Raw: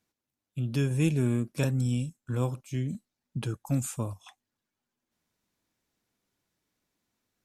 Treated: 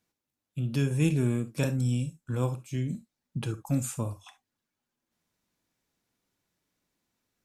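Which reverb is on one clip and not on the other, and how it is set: gated-style reverb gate 90 ms flat, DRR 10.5 dB

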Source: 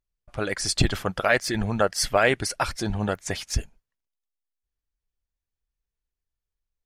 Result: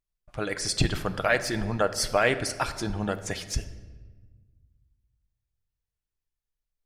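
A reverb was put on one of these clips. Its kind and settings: simulated room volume 1200 m³, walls mixed, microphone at 0.51 m; trim -3 dB

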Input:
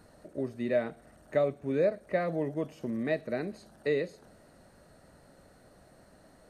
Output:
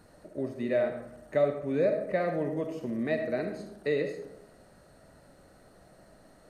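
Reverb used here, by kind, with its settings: algorithmic reverb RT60 0.89 s, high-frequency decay 0.45×, pre-delay 20 ms, DRR 5.5 dB

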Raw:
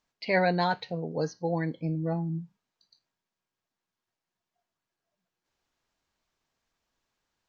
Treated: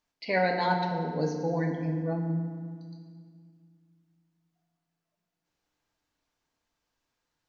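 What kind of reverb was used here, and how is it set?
FDN reverb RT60 2 s, low-frequency decay 1.45×, high-frequency decay 0.7×, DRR 2.5 dB; trim -2.5 dB

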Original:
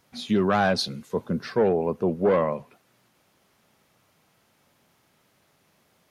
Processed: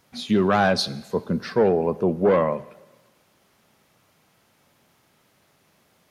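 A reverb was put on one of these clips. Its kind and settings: Schroeder reverb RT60 1.2 s, DRR 18.5 dB; trim +2.5 dB

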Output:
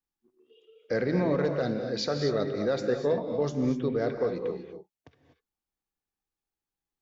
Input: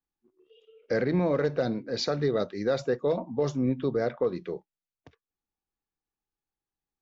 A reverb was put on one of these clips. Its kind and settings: gated-style reverb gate 270 ms rising, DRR 5 dB; trim -1.5 dB

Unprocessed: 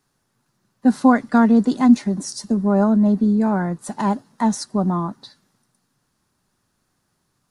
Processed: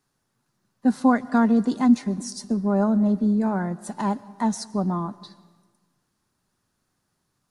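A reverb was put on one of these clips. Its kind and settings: algorithmic reverb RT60 1.4 s, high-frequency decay 0.65×, pre-delay 85 ms, DRR 19.5 dB; trim -4.5 dB

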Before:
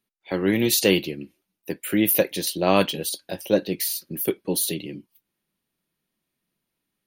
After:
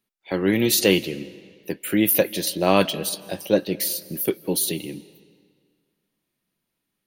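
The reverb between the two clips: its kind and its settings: algorithmic reverb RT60 1.9 s, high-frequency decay 0.85×, pre-delay 120 ms, DRR 19 dB; trim +1 dB

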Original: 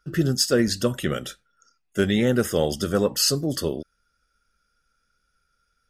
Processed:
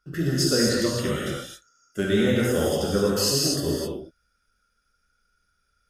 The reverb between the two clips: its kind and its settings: gated-style reverb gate 290 ms flat, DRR -5 dB; trim -6 dB

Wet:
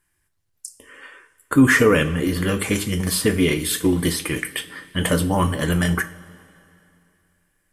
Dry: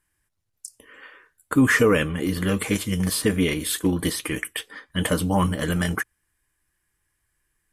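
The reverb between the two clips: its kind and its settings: two-slope reverb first 0.36 s, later 2.8 s, from -18 dB, DRR 7.5 dB; trim +2.5 dB

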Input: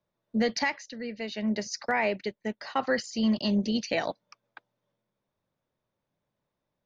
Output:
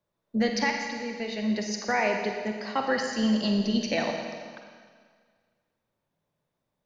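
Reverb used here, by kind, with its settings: Schroeder reverb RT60 1.8 s, DRR 2.5 dB

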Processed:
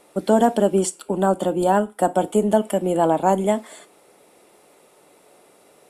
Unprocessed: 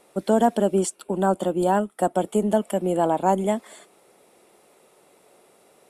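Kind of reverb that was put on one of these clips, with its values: FDN reverb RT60 0.3 s, low-frequency decay 0.95×, high-frequency decay 0.95×, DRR 12.5 dB; trim +3 dB

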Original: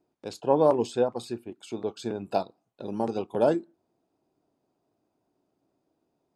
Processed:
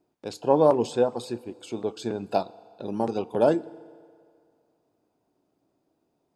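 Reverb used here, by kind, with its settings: FDN reverb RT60 2.2 s, low-frequency decay 0.75×, high-frequency decay 0.8×, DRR 19 dB; trim +2 dB

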